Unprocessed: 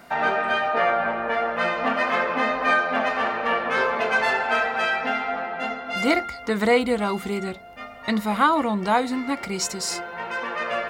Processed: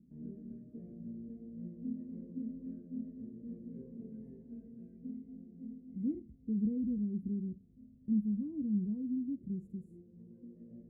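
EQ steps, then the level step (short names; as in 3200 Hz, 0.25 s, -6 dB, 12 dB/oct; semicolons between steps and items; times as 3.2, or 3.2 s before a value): inverse Chebyshev band-stop 740–5500 Hz, stop band 60 dB; tape spacing loss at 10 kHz 33 dB; low shelf 96 Hz -11 dB; -2.0 dB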